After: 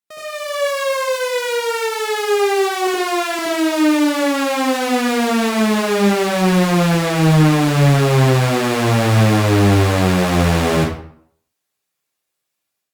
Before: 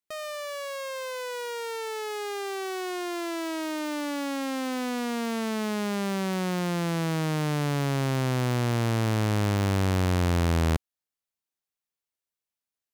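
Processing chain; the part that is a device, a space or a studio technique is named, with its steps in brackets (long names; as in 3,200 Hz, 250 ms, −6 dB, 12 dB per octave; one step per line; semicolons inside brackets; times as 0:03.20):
0:02.87–0:03.39: Butterworth high-pass 350 Hz 96 dB per octave
far-field microphone of a smart speaker (convolution reverb RT60 0.60 s, pre-delay 64 ms, DRR −6 dB; high-pass filter 140 Hz 6 dB per octave; automatic gain control gain up to 8 dB; Opus 48 kbit/s 48,000 Hz)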